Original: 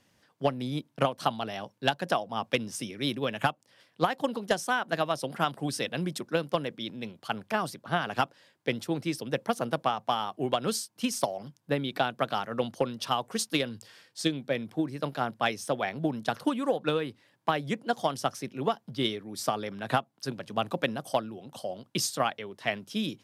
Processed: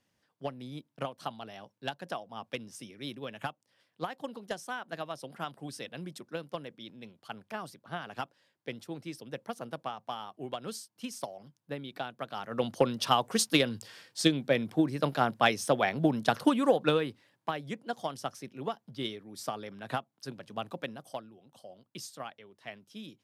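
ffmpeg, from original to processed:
-af "volume=3dB,afade=t=in:st=12.33:d=0.52:silence=0.223872,afade=t=out:st=16.75:d=0.77:silence=0.316228,afade=t=out:st=20.49:d=0.87:silence=0.446684"

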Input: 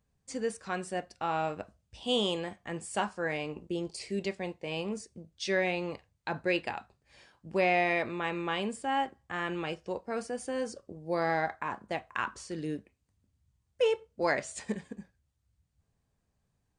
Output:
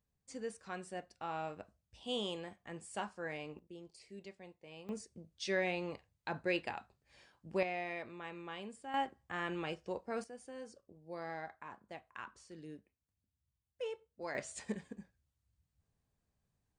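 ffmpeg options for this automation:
-af "asetnsamples=n=441:p=0,asendcmd='3.59 volume volume -17.5dB;4.89 volume volume -5.5dB;7.63 volume volume -13.5dB;8.94 volume volume -5dB;10.24 volume volume -14.5dB;14.35 volume volume -5.5dB',volume=-9.5dB"

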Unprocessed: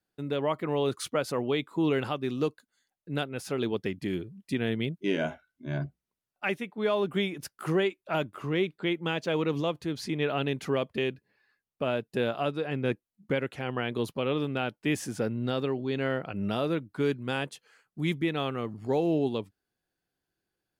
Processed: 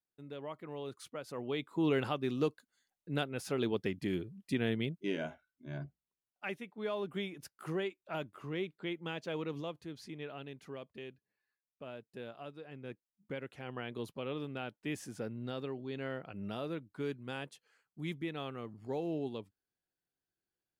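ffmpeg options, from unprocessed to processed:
-af "volume=3.5dB,afade=t=in:st=1.24:d=0.71:silence=0.266073,afade=t=out:st=4.67:d=0.62:silence=0.473151,afade=t=out:st=9.33:d=1.13:silence=0.421697,afade=t=in:st=12.85:d=0.9:silence=0.446684"

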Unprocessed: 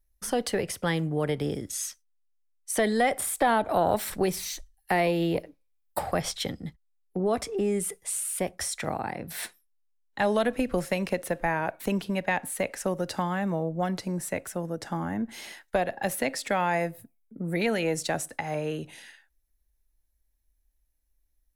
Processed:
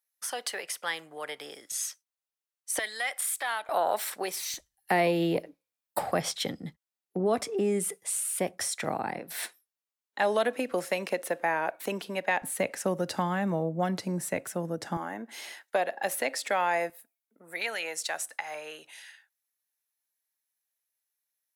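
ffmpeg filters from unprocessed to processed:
-af "asetnsamples=n=441:p=0,asendcmd='1.72 highpass f 450;2.79 highpass f 1500;3.69 highpass f 640;4.54 highpass f 160;9.19 highpass f 350;12.42 highpass f 120;14.97 highpass f 430;16.9 highpass f 950',highpass=950"

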